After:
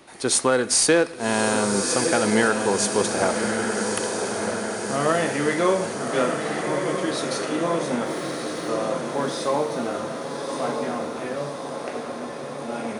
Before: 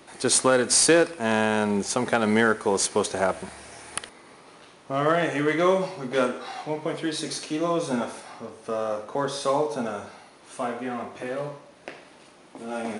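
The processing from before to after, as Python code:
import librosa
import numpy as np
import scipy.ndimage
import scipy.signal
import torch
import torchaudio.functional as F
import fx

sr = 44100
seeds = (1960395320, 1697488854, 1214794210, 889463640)

y = fx.sample_gate(x, sr, floor_db=-47.0, at=(8.05, 8.7))
y = fx.echo_diffused(y, sr, ms=1208, feedback_pct=64, wet_db=-4.5)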